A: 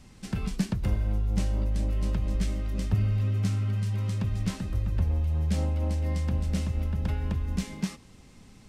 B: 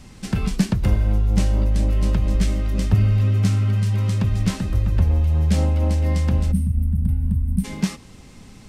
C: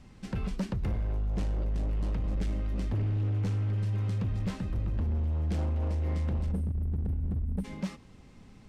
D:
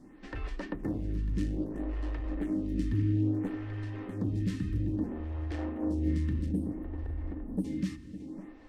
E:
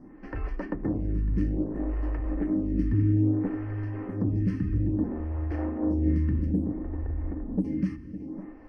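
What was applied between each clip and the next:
spectral gain 6.52–7.64, 270–8200 Hz -23 dB; gain +8.5 dB
high shelf 4600 Hz -12 dB; hard clip -17.5 dBFS, distortion -11 dB; gain -9 dB
small resonant body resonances 300/1800 Hz, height 18 dB, ringing for 85 ms; tape echo 0.557 s, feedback 78%, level -11.5 dB, low-pass 4100 Hz; photocell phaser 0.6 Hz
running mean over 12 samples; gain +5 dB

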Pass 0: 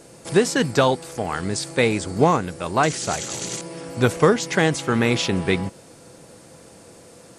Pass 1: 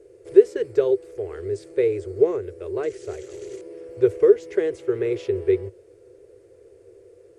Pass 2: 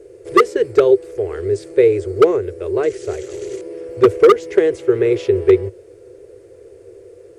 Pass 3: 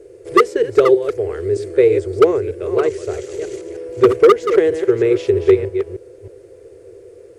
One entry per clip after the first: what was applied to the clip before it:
EQ curve 100 Hz 0 dB, 160 Hz -24 dB, 260 Hz -22 dB, 390 Hz +13 dB, 820 Hz -19 dB, 2000 Hz -10 dB, 3900 Hz -18 dB; gain -4.5 dB
wavefolder -10.5 dBFS; gain +8.5 dB
reverse delay 0.314 s, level -9 dB

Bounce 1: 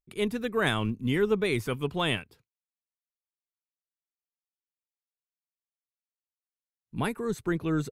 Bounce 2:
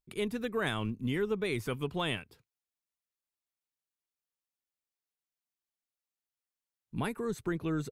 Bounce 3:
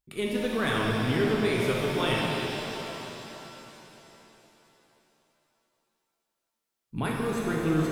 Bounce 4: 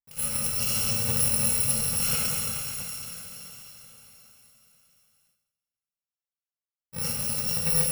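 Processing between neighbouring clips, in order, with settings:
compressor 2:1, threshold -33 dBFS, peak gain reduction 7.5 dB
shimmer reverb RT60 3.7 s, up +7 st, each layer -8 dB, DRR -3.5 dB; gain +2 dB
FFT order left unsorted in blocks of 128 samples; gate with hold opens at -57 dBFS; two-slope reverb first 0.78 s, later 2.7 s, from -27 dB, DRR 1.5 dB; gain -2 dB

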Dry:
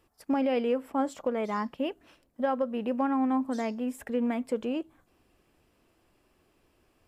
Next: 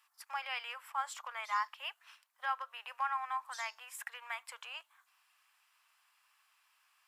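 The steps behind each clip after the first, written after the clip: steep high-pass 980 Hz 36 dB/oct; gain +2 dB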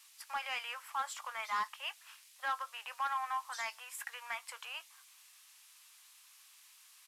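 doubler 18 ms -13 dB; soft clip -28.5 dBFS, distortion -16 dB; band noise 2000–13000 Hz -63 dBFS; gain +1.5 dB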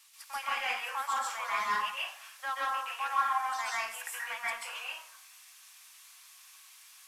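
plate-style reverb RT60 0.57 s, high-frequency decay 0.6×, pre-delay 0.12 s, DRR -6 dB

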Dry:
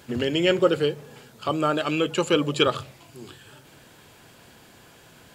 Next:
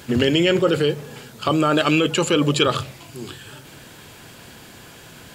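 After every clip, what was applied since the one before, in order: in parallel at -0.5 dB: negative-ratio compressor -24 dBFS, ratio -0.5; on the sum: bell 690 Hz -3 dB 1.9 oct; gain +2 dB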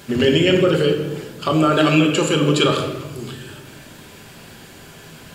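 reverb RT60 1.1 s, pre-delay 5 ms, DRR 1.5 dB; gain -1 dB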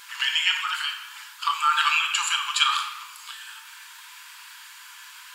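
brick-wall FIR high-pass 860 Hz

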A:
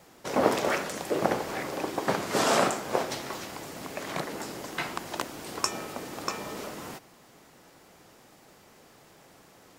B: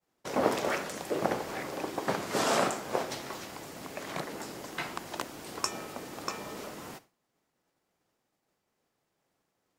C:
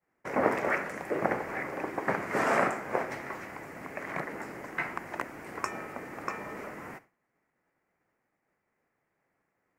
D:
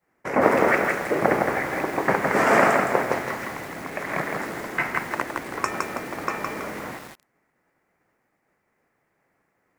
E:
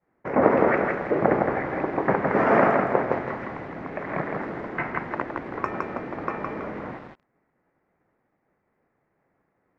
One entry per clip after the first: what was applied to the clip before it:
expander -42 dBFS; gain -3.5 dB
resonant high shelf 2700 Hz -9.5 dB, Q 3
lo-fi delay 0.163 s, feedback 35%, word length 8-bit, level -3 dB; gain +7.5 dB
tape spacing loss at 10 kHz 43 dB; gain +2.5 dB

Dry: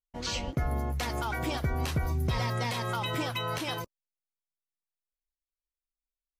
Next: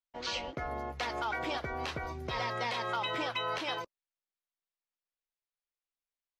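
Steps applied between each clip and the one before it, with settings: three-band isolator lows -15 dB, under 340 Hz, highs -22 dB, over 5400 Hz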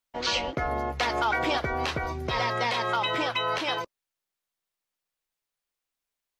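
vocal rider 2 s; gain +7.5 dB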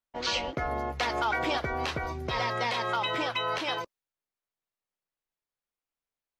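mismatched tape noise reduction decoder only; gain -2.5 dB

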